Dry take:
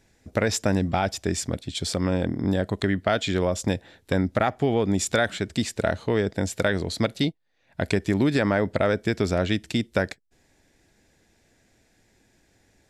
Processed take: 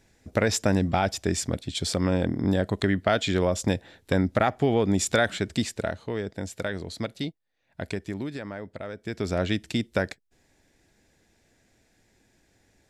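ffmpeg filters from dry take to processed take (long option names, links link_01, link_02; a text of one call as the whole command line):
ffmpeg -i in.wav -af "volume=12.5dB,afade=type=out:start_time=5.53:duration=0.43:silence=0.421697,afade=type=out:start_time=7.85:duration=0.58:silence=0.446684,afade=type=in:start_time=8.97:duration=0.44:silence=0.237137" out.wav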